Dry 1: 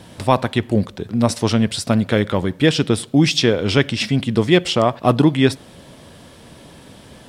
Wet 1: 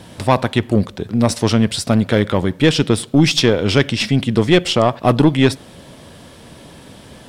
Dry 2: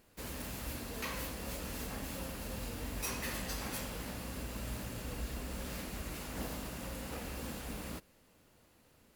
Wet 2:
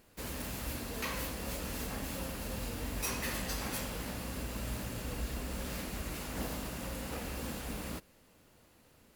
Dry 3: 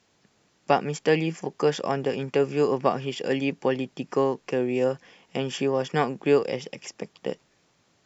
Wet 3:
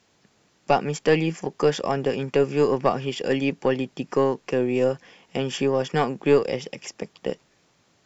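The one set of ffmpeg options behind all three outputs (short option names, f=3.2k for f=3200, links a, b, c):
-af "aeval=exprs='(tanh(2.24*val(0)+0.35)-tanh(0.35))/2.24':c=same,volume=3.5dB"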